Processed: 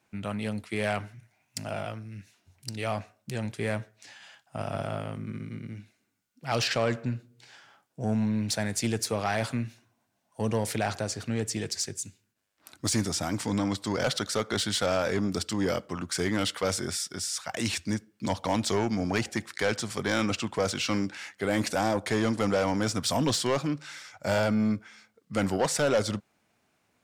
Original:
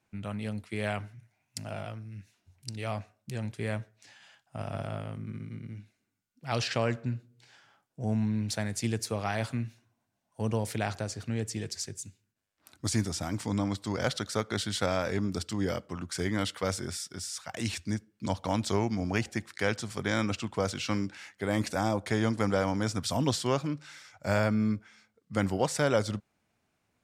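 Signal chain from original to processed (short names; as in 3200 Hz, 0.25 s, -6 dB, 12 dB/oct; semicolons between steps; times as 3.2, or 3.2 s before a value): low shelf 110 Hz -10.5 dB; soft clip -24 dBFS, distortion -12 dB; gain +6 dB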